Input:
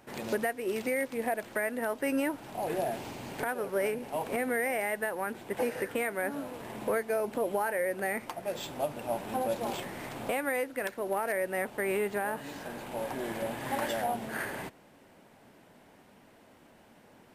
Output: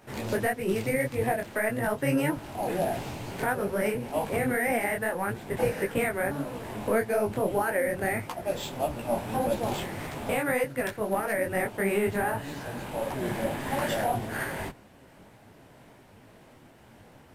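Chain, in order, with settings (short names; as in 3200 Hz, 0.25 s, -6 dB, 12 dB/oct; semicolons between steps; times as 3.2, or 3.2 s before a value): octaver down 1 oct, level 0 dB; detuned doubles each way 58 cents; gain +7 dB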